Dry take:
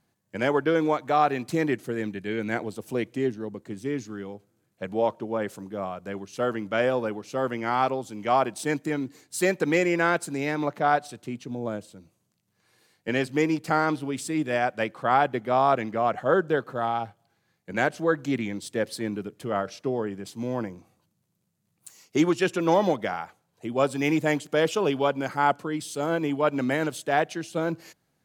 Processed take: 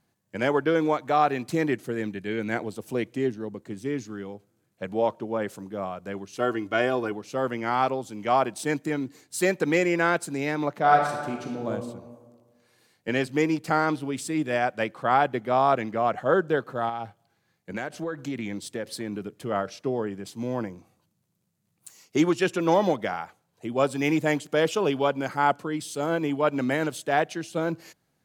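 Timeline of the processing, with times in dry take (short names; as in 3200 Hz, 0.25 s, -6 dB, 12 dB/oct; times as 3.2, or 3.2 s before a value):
6.38–7.12 comb 2.8 ms
10.78–11.68 reverb throw, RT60 1.5 s, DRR 1 dB
16.89–19.33 compressor, threshold -27 dBFS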